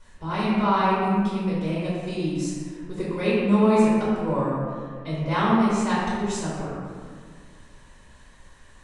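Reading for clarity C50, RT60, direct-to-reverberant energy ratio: -3.0 dB, 1.9 s, -11.0 dB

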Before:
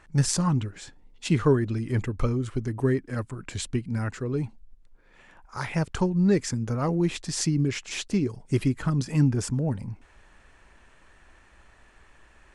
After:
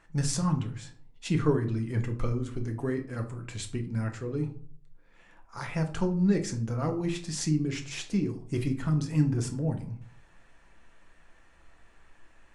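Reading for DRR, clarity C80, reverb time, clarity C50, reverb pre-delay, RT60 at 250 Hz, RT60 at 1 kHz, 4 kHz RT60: 3.5 dB, 16.5 dB, 0.55 s, 12.0 dB, 4 ms, 0.55 s, 0.50 s, 0.30 s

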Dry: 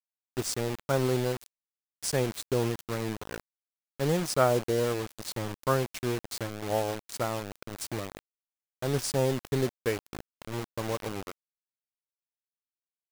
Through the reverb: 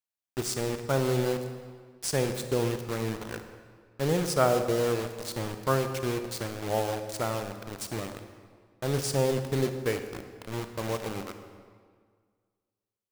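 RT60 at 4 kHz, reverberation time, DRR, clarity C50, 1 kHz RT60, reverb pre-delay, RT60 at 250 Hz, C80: 1.3 s, 1.8 s, 7.5 dB, 8.5 dB, 1.8 s, 32 ms, 1.9 s, 9.5 dB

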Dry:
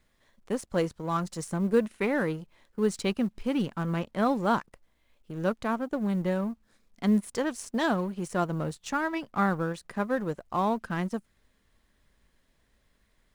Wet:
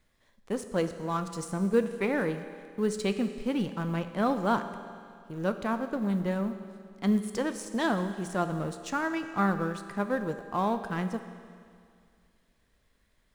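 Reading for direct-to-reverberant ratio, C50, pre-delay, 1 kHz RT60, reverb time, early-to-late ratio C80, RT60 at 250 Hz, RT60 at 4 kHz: 8.5 dB, 10.0 dB, 10 ms, 2.1 s, 2.1 s, 10.5 dB, 2.2 s, 2.1 s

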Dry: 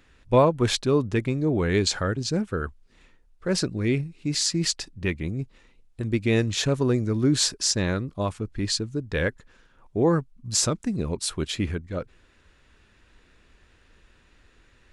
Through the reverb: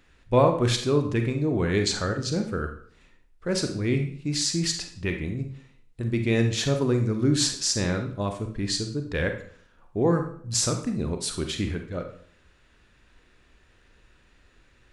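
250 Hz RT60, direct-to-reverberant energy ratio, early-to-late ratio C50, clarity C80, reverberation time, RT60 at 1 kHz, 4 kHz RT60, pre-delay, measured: 0.60 s, 5.0 dB, 7.5 dB, 12.0 dB, 0.55 s, 0.50 s, 0.45 s, 30 ms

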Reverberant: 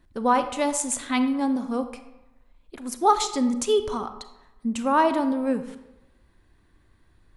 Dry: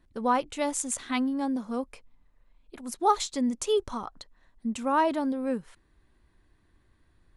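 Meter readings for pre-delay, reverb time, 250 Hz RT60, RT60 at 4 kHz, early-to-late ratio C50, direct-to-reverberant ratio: 32 ms, 0.95 s, 0.95 s, 0.60 s, 11.0 dB, 9.5 dB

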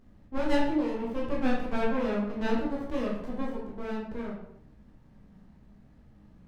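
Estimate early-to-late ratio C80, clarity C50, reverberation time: 6.5 dB, 2.5 dB, 0.75 s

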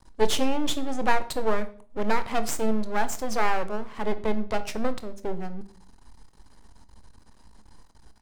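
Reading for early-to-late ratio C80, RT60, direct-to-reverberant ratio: 19.5 dB, 0.50 s, 11.0 dB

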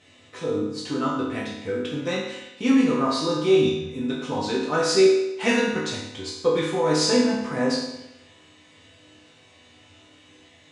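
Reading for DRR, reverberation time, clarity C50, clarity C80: -7.0 dB, 0.90 s, 1.5 dB, 4.5 dB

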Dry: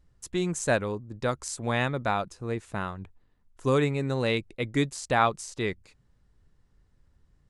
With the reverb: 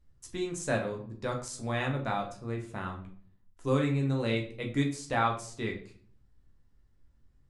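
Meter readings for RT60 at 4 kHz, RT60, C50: 0.40 s, 0.50 s, 9.5 dB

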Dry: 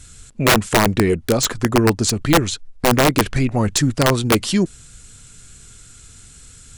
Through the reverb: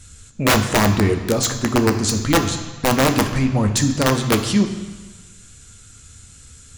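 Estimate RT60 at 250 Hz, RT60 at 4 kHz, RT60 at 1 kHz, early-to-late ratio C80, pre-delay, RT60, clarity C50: 1.3 s, 1.4 s, 1.4 s, 10.5 dB, 3 ms, 1.3 s, 9.0 dB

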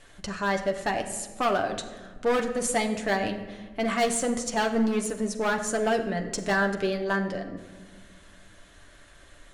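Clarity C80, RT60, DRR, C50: 11.5 dB, 1.4 s, 3.0 dB, 10.0 dB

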